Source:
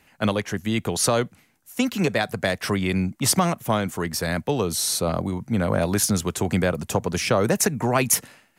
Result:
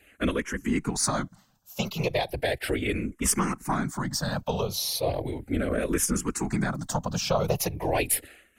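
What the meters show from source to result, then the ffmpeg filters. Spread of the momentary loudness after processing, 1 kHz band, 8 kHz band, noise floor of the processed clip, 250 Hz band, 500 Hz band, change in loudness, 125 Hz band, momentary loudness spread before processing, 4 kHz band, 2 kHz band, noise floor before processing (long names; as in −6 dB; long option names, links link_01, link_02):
5 LU, −4.5 dB, −4.5 dB, −62 dBFS, −5.0 dB, −5.0 dB, −4.5 dB, −5.5 dB, 6 LU, −4.5 dB, −5.0 dB, −61 dBFS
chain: -filter_complex "[0:a]afftfilt=real='hypot(re,im)*cos(2*PI*random(0))':imag='hypot(re,im)*sin(2*PI*random(1))':win_size=512:overlap=0.75,aeval=exprs='0.266*(cos(1*acos(clip(val(0)/0.266,-1,1)))-cos(1*PI/2))+0.0133*(cos(4*acos(clip(val(0)/0.266,-1,1)))-cos(4*PI/2))':channel_layout=same,asplit=2[link_01][link_02];[link_02]acompressor=threshold=-35dB:ratio=6,volume=-0.5dB[link_03];[link_01][link_03]amix=inputs=2:normalize=0,asplit=2[link_04][link_05];[link_05]afreqshift=-0.36[link_06];[link_04][link_06]amix=inputs=2:normalize=1,volume=2dB"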